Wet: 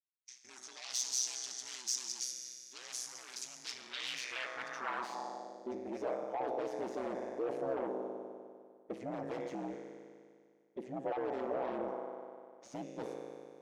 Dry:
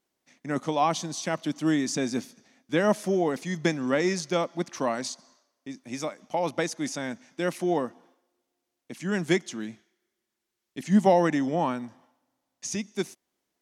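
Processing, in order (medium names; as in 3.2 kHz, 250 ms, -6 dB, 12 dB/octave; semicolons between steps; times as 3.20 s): RIAA curve recording; gate -56 dBFS, range -54 dB; tilt EQ -3.5 dB/octave; reverse; compression 6:1, threshold -32 dBFS, peak gain reduction 17 dB; reverse; formant-preserving pitch shift +2.5 st; feedback comb 53 Hz, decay 2 s, harmonics all, mix 80%; in parallel at -8 dB: sine folder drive 16 dB, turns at -32.5 dBFS; on the sum: ring modulator 63 Hz; band-pass sweep 5.8 kHz -> 560 Hz, 3.55–5.61 s; trim +13.5 dB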